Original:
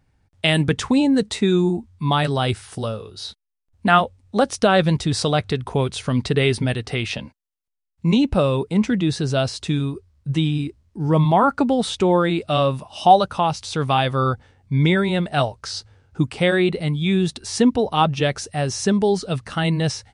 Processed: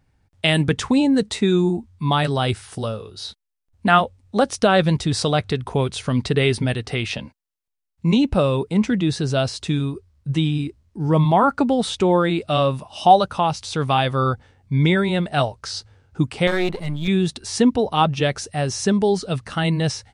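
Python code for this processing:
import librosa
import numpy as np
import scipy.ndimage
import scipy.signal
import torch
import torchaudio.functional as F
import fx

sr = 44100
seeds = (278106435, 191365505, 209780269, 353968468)

y = fx.halfwave_gain(x, sr, db=-12.0, at=(16.47, 17.08))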